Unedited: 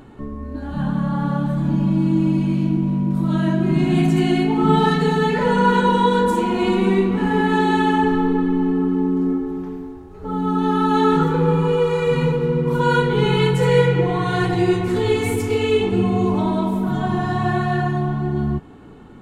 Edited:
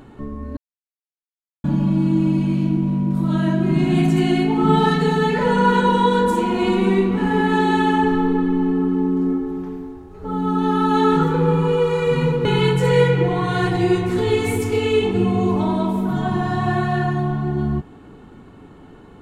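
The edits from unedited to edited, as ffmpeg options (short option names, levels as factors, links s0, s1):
-filter_complex "[0:a]asplit=4[s0][s1][s2][s3];[s0]atrim=end=0.57,asetpts=PTS-STARTPTS,afade=t=out:st=0.566:d=0.004:c=hsin[s4];[s1]atrim=start=0.57:end=1.64,asetpts=PTS-STARTPTS,volume=0[s5];[s2]atrim=start=1.64:end=12.452,asetpts=PTS-STARTPTS,afade=t=in:d=0.004:c=hsin[s6];[s3]atrim=start=13.228[s7];[s4][s5][s6]concat=n=3:v=0:a=1[s8];[s8][s7]acrossfade=d=0.004:c1=hsin:c2=hsin"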